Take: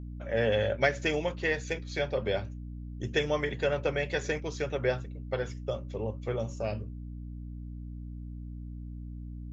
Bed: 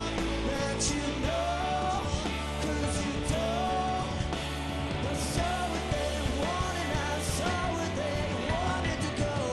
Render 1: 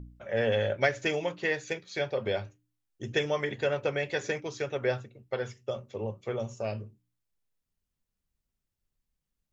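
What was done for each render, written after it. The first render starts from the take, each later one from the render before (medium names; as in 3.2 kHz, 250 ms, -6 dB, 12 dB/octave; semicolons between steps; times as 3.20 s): de-hum 60 Hz, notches 5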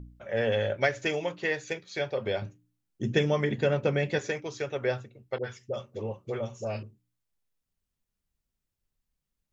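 2.42–4.19 s: peaking EQ 190 Hz +13 dB 1.4 oct; 5.38–6.83 s: phase dispersion highs, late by 60 ms, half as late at 690 Hz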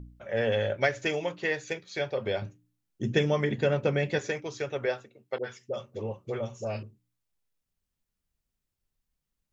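4.85–5.80 s: high-pass 310 Hz -> 140 Hz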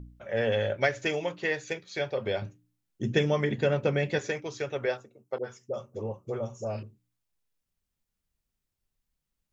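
4.97–6.78 s: high-order bell 2.7 kHz -9 dB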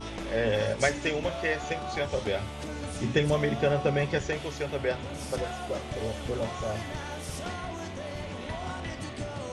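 add bed -6 dB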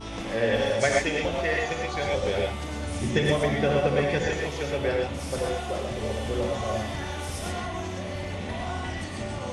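gated-style reverb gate 150 ms rising, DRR -1 dB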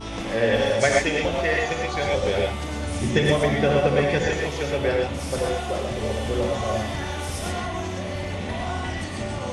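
trim +3.5 dB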